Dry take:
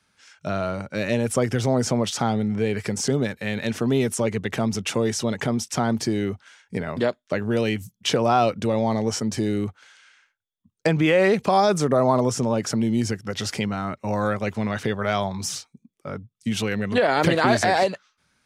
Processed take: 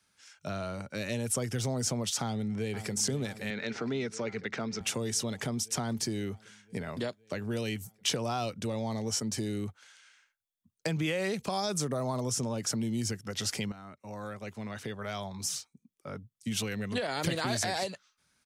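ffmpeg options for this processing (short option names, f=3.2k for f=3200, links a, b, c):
-filter_complex "[0:a]asplit=2[a][b];[b]afade=t=in:st=2.22:d=0.01,afade=t=out:st=2.93:d=0.01,aecho=0:1:510|1020|1530|2040|2550|3060|3570|4080|4590|5100|5610:0.199526|0.149645|0.112234|0.0841751|0.0631313|0.0473485|0.0355114|0.0266335|0.0199752|0.0149814|0.011236[c];[a][c]amix=inputs=2:normalize=0,asettb=1/sr,asplit=3[d][e][f];[d]atrim=end=3.504[g];[e]atrim=start=3.5:end=4.81,asetpts=PTS-STARTPTS,afade=t=in:d=0.004:c=qsin,afade=t=out:st=1.306:d=0.004:c=qsin,highpass=170,equalizer=f=450:t=q:w=4:g=3,equalizer=f=1.4k:t=q:w=4:g=8,equalizer=f=2.1k:t=q:w=4:g=5,equalizer=f=3.1k:t=q:w=4:g=-5,lowpass=f=5.4k:w=0.5412,lowpass=f=5.4k:w=1.3066[h];[f]atrim=start=4.806[i];[g][h]acrossfade=d=0.004:c1=hsin:c2=qsin[j];[j][i]acrossfade=d=0.004:c1=qsin:c2=hsin,asplit=2[k][l];[k]atrim=end=13.72,asetpts=PTS-STARTPTS,afade=t=out:st=13.716:d=0.004:c=hsin:silence=0.211349[m];[l]atrim=start=13.72,asetpts=PTS-STARTPTS,afade=t=in:d=2.61:silence=0.211349[n];[m][n]concat=n=2:v=0:a=1,highshelf=f=5.2k:g=9.5,acrossover=split=180|3000[o][p][q];[p]acompressor=threshold=-29dB:ratio=2[r];[o][r][q]amix=inputs=3:normalize=0,volume=-7.5dB"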